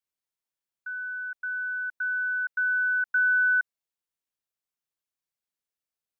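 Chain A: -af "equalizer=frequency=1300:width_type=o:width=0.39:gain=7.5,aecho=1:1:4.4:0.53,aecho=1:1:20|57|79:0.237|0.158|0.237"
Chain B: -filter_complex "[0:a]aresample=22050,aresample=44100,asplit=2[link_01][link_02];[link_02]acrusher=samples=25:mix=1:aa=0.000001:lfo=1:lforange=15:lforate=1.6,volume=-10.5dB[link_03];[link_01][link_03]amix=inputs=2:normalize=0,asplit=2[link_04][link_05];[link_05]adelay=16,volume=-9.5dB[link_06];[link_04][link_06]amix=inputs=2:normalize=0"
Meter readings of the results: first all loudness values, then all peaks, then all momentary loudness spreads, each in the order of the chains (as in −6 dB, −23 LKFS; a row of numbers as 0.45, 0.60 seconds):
−27.0, −23.5 LKFS; −16.0, −14.0 dBFS; 13, 14 LU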